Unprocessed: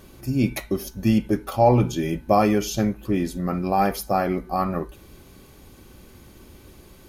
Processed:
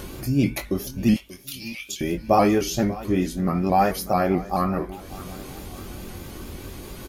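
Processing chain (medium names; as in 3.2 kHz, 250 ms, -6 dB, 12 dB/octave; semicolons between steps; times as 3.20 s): 1.14–2.01 s: steep high-pass 2.4 kHz 36 dB/octave; upward compressor, threshold -27 dBFS; doubling 22 ms -6.5 dB; feedback delay 588 ms, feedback 48%, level -18 dB; vibrato with a chosen wave saw up 4.6 Hz, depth 100 cents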